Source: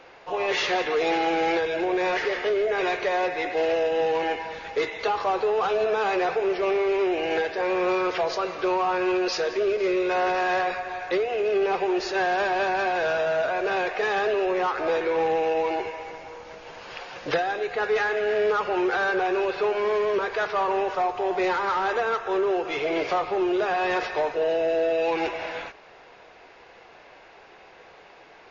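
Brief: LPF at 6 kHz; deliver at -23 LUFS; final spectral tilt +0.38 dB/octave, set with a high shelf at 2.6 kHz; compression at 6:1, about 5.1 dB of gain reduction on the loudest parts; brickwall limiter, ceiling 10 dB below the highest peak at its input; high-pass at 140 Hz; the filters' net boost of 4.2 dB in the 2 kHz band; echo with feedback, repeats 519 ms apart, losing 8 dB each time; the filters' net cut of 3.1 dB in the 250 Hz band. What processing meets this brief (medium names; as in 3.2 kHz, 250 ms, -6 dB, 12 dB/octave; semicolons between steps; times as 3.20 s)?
high-pass 140 Hz; low-pass 6 kHz; peaking EQ 250 Hz -6.5 dB; peaking EQ 2 kHz +3.5 dB; treble shelf 2.6 kHz +5 dB; compression 6:1, threshold -25 dBFS; peak limiter -25.5 dBFS; feedback delay 519 ms, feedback 40%, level -8 dB; trim +9 dB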